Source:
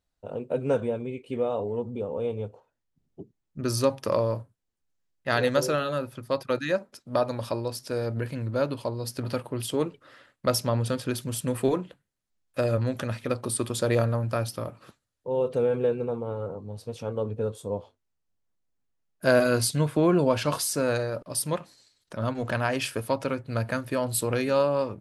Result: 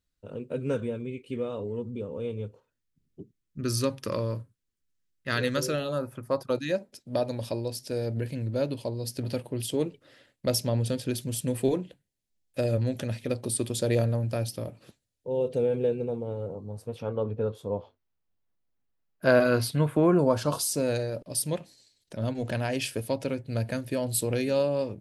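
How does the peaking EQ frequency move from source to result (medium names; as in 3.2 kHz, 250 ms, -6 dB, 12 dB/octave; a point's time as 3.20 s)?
peaking EQ -14 dB 0.89 oct
5.67 s 760 Hz
6.18 s 5 kHz
6.67 s 1.2 kHz
16.49 s 1.2 kHz
17.03 s 8.4 kHz
19.59 s 8.4 kHz
20.88 s 1.2 kHz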